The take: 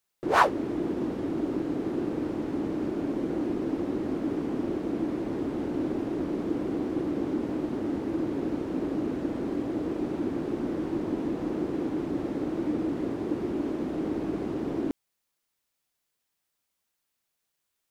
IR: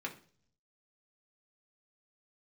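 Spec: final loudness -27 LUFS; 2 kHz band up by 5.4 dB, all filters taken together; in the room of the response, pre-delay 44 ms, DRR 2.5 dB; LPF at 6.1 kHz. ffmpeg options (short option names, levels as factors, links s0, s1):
-filter_complex "[0:a]lowpass=6100,equalizer=f=2000:t=o:g=7.5,asplit=2[s0][s1];[1:a]atrim=start_sample=2205,adelay=44[s2];[s1][s2]afir=irnorm=-1:irlink=0,volume=0.631[s3];[s0][s3]amix=inputs=2:normalize=0,volume=1.06"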